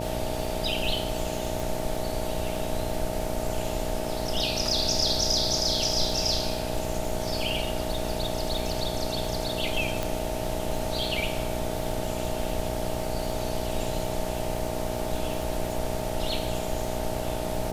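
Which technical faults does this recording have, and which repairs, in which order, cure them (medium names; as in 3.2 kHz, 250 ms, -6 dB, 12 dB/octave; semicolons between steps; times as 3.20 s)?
buzz 60 Hz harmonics 15 -33 dBFS
crackle 60 per s -34 dBFS
whine 630 Hz -34 dBFS
1.60 s: pop
10.03 s: pop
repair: de-click; band-stop 630 Hz, Q 30; de-hum 60 Hz, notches 15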